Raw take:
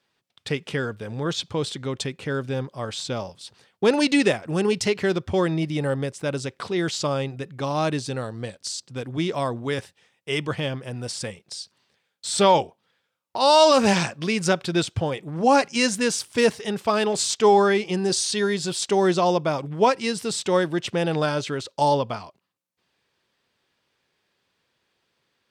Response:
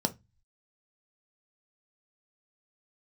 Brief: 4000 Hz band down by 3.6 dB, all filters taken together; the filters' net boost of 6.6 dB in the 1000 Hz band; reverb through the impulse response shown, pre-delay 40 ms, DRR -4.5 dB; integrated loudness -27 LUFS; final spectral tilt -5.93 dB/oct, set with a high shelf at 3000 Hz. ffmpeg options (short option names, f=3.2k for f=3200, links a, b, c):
-filter_complex "[0:a]equalizer=f=1k:t=o:g=8,highshelf=f=3k:g=3.5,equalizer=f=4k:t=o:g=-8,asplit=2[a][b];[1:a]atrim=start_sample=2205,adelay=40[c];[b][c]afir=irnorm=-1:irlink=0,volume=-2dB[d];[a][d]amix=inputs=2:normalize=0,volume=-16.5dB"